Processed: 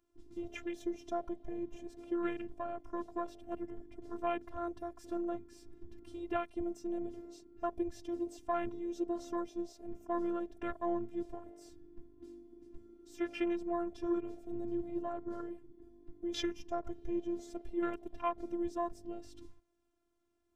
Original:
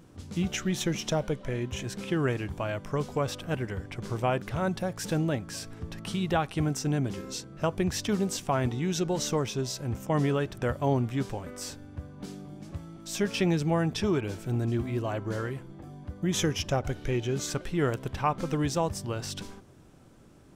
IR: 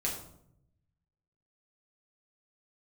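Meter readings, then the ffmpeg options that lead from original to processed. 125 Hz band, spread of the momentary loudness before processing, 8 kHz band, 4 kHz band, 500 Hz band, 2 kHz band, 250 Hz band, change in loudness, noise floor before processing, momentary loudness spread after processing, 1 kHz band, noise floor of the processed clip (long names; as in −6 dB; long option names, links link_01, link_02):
−28.0 dB, 12 LU, below −20 dB, −16.0 dB, −8.0 dB, −13.5 dB, −7.5 dB, −9.0 dB, −53 dBFS, 18 LU, −7.0 dB, −77 dBFS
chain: -af "afwtdn=0.0178,afftfilt=real='hypot(re,im)*cos(PI*b)':imag='0':win_size=512:overlap=0.75,volume=-4dB"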